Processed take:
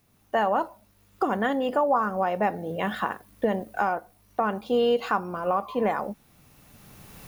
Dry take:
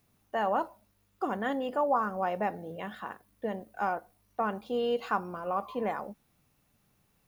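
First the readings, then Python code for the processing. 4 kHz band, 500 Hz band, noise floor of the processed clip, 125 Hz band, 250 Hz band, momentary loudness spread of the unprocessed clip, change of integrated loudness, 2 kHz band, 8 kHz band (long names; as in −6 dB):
+7.5 dB, +6.5 dB, −62 dBFS, +7.5 dB, +7.0 dB, 12 LU, +6.0 dB, +6.5 dB, can't be measured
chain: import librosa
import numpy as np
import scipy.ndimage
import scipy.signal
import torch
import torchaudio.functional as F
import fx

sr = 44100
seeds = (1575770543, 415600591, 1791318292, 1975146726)

y = fx.recorder_agc(x, sr, target_db=-18.5, rise_db_per_s=14.0, max_gain_db=30)
y = F.gain(torch.from_numpy(y), 4.0).numpy()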